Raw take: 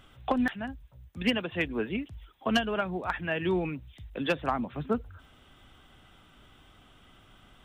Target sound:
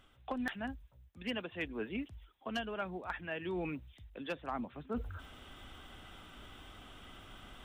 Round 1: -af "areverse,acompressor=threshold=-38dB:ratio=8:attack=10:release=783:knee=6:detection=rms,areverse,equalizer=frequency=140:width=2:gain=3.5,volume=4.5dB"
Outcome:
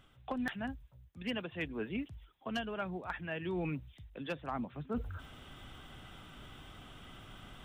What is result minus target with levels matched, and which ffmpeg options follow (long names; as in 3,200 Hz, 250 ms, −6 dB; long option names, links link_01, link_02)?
125 Hz band +4.0 dB
-af "areverse,acompressor=threshold=-38dB:ratio=8:attack=10:release=783:knee=6:detection=rms,areverse,equalizer=frequency=140:width=2:gain=-5.5,volume=4.5dB"